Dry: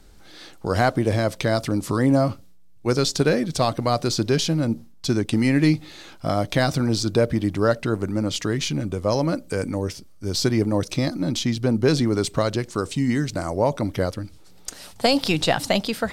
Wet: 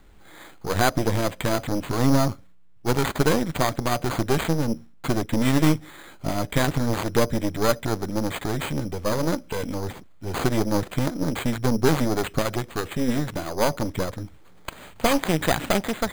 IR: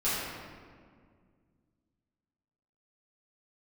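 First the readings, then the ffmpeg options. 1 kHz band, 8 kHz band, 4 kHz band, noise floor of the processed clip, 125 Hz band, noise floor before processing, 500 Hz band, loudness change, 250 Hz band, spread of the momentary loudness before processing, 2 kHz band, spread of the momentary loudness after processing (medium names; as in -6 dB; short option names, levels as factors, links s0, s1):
0.0 dB, -1.5 dB, -4.5 dB, -47 dBFS, -2.5 dB, -46 dBFS, -2.5 dB, -2.0 dB, -2.5 dB, 8 LU, -0.5 dB, 10 LU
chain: -af "asuperstop=centerf=2700:order=4:qfactor=7,acrusher=samples=8:mix=1:aa=0.000001,aeval=exprs='0.531*(cos(1*acos(clip(val(0)/0.531,-1,1)))-cos(1*PI/2))+0.106*(cos(6*acos(clip(val(0)/0.531,-1,1)))-cos(6*PI/2))':c=same,volume=0.794"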